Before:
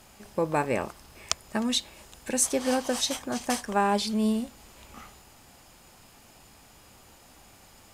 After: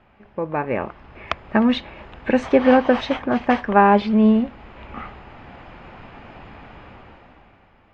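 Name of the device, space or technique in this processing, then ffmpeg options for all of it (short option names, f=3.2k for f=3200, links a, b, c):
action camera in a waterproof case: -af "lowpass=f=2.5k:w=0.5412,lowpass=f=2.5k:w=1.3066,dynaudnorm=f=150:g=13:m=15.5dB" -ar 32000 -c:a aac -b:a 64k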